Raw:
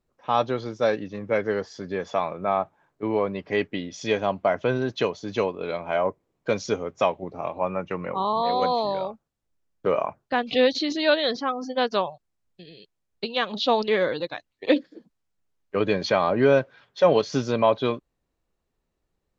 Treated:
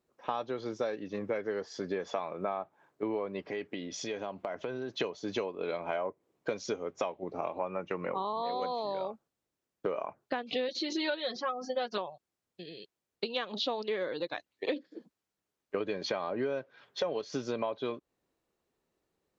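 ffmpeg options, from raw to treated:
-filter_complex "[0:a]asettb=1/sr,asplit=3[a][b][c];[a]atrim=end=3.444[d];[b]atrim=start=3.44:end=5,asetpts=PTS-STARTPTS,afade=t=in:d=0.004:c=qsin,afade=t=out:st=1.556:d=0.004:c=qsin,acompressor=threshold=-35dB:ratio=4:attack=3.2:release=140:knee=1:detection=peak[e];[c]atrim=start=4.996[f];[d][e]acrossfade=d=0.004:c1=hsin:c2=qsin[g];[g][f]acrossfade=d=0.004:c1=qsin:c2=hsin,asettb=1/sr,asplit=3[h][i][j];[h]atrim=end=10.684[k];[i]atrim=start=10.68:end=11.98,asetpts=PTS-STARTPTS,afade=t=in:d=0.004:c=qsin,afade=t=out:st=1.296:d=0.004:c=qsin,aecho=1:1:5.5:0.89,atrim=end_sample=57330[l];[j]atrim=start=11.976[m];[k][l]acrossfade=d=0.004:c1=hsin:c2=qsin[n];[n][m]acrossfade=d=0.004:c1=qsin:c2=hsin,highpass=f=220:p=1,equalizer=f=370:w=1.5:g=3.5,acompressor=threshold=-30dB:ratio=10"

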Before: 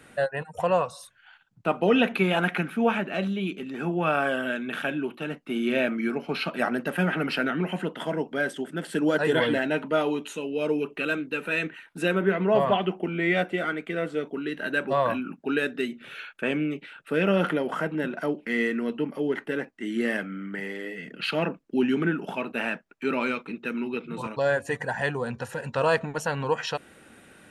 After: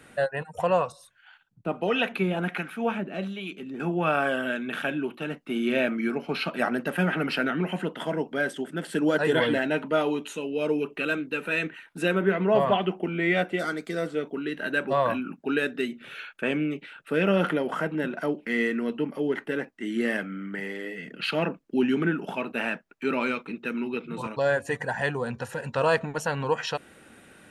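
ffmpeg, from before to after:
-filter_complex "[0:a]asettb=1/sr,asplit=3[a][b][c];[a]atrim=end=0.924[d];[b]atrim=start=0.92:end=3.8,asetpts=PTS-STARTPTS,afade=t=in:d=0.004:c=qsin,afade=t=out:st=2.876:d=0.004:c=qsin,acrossover=split=550[e][f];[e]aeval=exprs='val(0)*(1-0.7/2+0.7/2*cos(2*PI*1.4*n/s))':c=same[g];[f]aeval=exprs='val(0)*(1-0.7/2-0.7/2*cos(2*PI*1.4*n/s))':c=same[h];[g][h]amix=inputs=2:normalize=0[i];[c]atrim=start=3.796[j];[d][i]acrossfade=d=0.004:c1=hsin:c2=qsin[k];[k][j]acrossfade=d=0.004:c1=qsin:c2=hsin,asettb=1/sr,asplit=3[l][m][n];[l]atrim=end=13.594[o];[m]atrim=start=13.59:end=14.07,asetpts=PTS-STARTPTS,afade=t=in:d=0.004:c=qsin,afade=t=out:st=0.476:d=0.004:c=qsin,highshelf=f=3.7k:t=q:w=3:g=9.5[p];[n]atrim=start=14.066[q];[o][p]acrossfade=d=0.004:c1=hsin:c2=qsin[r];[r][q]acrossfade=d=0.004:c1=qsin:c2=hsin"

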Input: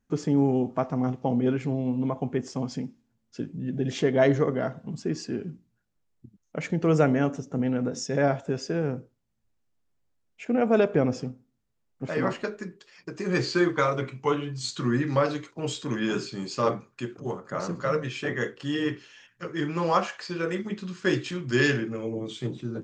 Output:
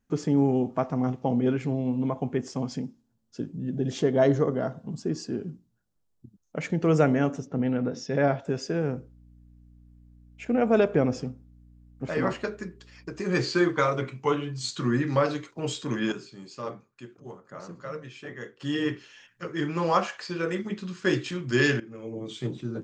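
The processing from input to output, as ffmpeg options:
-filter_complex "[0:a]asettb=1/sr,asplit=3[a][b][c];[a]atrim=end=2.794[d];[b]atrim=start=2.79:end=6.56,asetpts=PTS-STARTPTS,afade=t=in:d=0.004:c=qsin,afade=t=out:st=3.766:d=0.004:c=qsin,equalizer=f=2.2k:w=1.5:g=-8[e];[c]atrim=start=6.556[f];[d][e]acrossfade=d=0.004:c1=hsin:c2=qsin[g];[g][f]acrossfade=d=0.004:c1=qsin:c2=hsin,asettb=1/sr,asplit=3[h][i][j];[h]atrim=end=7.474[k];[i]atrim=start=7.47:end=8.45,asetpts=PTS-STARTPTS,afade=t=in:d=0.004:c=qsin,afade=t=out:st=0.976:d=0.004:c=qsin,lowpass=f=5k:w=0.5412,lowpass=f=5k:w=1.3066[l];[j]atrim=start=8.446[m];[k][l]acrossfade=d=0.004:c1=hsin:c2=qsin[n];[n][m]acrossfade=d=0.004:c1=qsin:c2=hsin,asettb=1/sr,asplit=3[o][p][q];[o]atrim=end=8.954[r];[p]atrim=start=8.95:end=13.21,asetpts=PTS-STARTPTS,afade=t=in:d=0.004:c=qsin,afade=t=out:st=4.256:d=0.004:c=qsin,aeval=exprs='val(0)+0.00251*(sin(2*PI*60*n/s)+sin(2*PI*2*60*n/s)/2+sin(2*PI*3*60*n/s)/3+sin(2*PI*4*60*n/s)/4+sin(2*PI*5*60*n/s)/5)':c=same[s];[q]atrim=start=13.206[t];[r][s]acrossfade=d=0.004:c1=hsin:c2=qsin[u];[u][t]acrossfade=d=0.004:c1=qsin:c2=hsin,asplit=4[v][w][x][y];[v]atrim=end=16.122[z];[w]atrim=start=16.118:end=18.612,asetpts=PTS-STARTPTS,volume=-10.5dB[aa];[x]atrim=start=18.608:end=21.8,asetpts=PTS-STARTPTS,afade=t=out:st=3.188:d=0.004:c=hsin:silence=0.149624[ab];[y]atrim=start=21.8,asetpts=PTS-STARTPTS,afade=t=in:d=0.62:silence=0.149624[ac];[z][aa]acrossfade=d=0.004:c1=hsin:c2=hsin[ad];[ab][ac]concat=n=2:v=0:a=1[ae];[ad][ae]acrossfade=d=0.004:c1=hsin:c2=hsin"

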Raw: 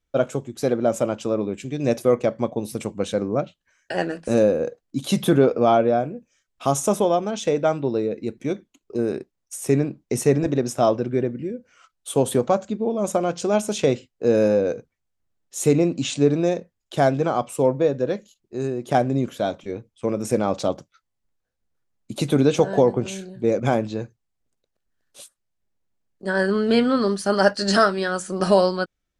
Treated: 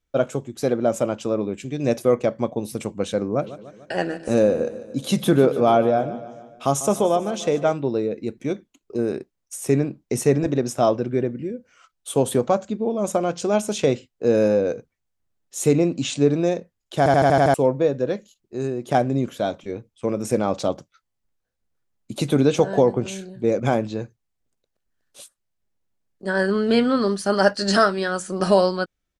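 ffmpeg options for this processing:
-filter_complex "[0:a]asplit=3[a][b][c];[a]afade=t=out:st=3.41:d=0.02[d];[b]aecho=1:1:147|294|441|588|735:0.178|0.0996|0.0558|0.0312|0.0175,afade=t=in:st=3.41:d=0.02,afade=t=out:st=7.72:d=0.02[e];[c]afade=t=in:st=7.72:d=0.02[f];[d][e][f]amix=inputs=3:normalize=0,asplit=8[g][h][i][j][k][l][m][n];[g]atrim=end=17.062[o];[h]atrim=start=16.978:end=17.062[p];[i]atrim=start=16.978:end=17.062[q];[j]atrim=start=16.978:end=17.062[r];[k]atrim=start=16.978:end=17.062[s];[l]atrim=start=16.978:end=17.062[t];[m]atrim=start=16.978:end=17.062[u];[n]atrim=start=17.538[v];[o][p]acrossfade=d=0.004:c1=hsin:c2=hsin[w];[w][q]acrossfade=d=0.004:c1=hsin:c2=hsin[x];[x][r]acrossfade=d=0.004:c1=hsin:c2=hsin[y];[y][s]acrossfade=d=0.004:c1=hsin:c2=hsin[z];[z][t]acrossfade=d=0.004:c1=hsin:c2=hsin[aa];[aa][u]acrossfade=d=0.004:c1=hsin:c2=hsin[ab];[ab][v]acrossfade=d=0.004:c1=hsin:c2=hsin"

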